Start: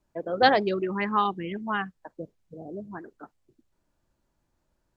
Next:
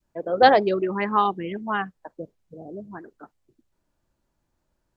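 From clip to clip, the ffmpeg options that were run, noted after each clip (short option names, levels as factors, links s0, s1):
-af "adynamicequalizer=threshold=0.0178:dfrequency=600:dqfactor=0.7:tfrequency=600:tqfactor=0.7:attack=5:release=100:ratio=0.375:range=3:mode=boostabove:tftype=bell"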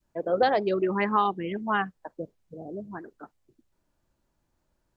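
-af "alimiter=limit=0.251:level=0:latency=1:release=420"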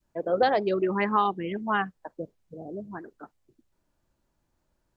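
-af anull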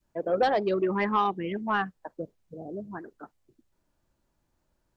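-af "asoftclip=type=tanh:threshold=0.2"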